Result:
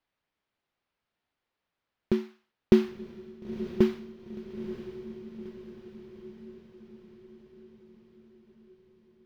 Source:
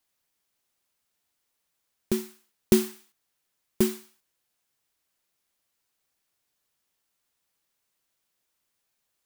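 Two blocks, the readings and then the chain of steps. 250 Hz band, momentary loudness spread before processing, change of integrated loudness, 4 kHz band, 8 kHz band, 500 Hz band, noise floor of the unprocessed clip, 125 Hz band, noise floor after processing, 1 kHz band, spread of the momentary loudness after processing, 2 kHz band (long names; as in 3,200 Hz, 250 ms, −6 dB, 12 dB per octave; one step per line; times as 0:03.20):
+1.5 dB, 17 LU, −3.0 dB, −6.0 dB, below −20 dB, +1.5 dB, −79 dBFS, +1.5 dB, below −85 dBFS, +0.5 dB, 23 LU, −1.0 dB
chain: high-frequency loss of the air 290 metres
feedback delay with all-pass diffusion 950 ms, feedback 57%, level −11.5 dB
level +1.5 dB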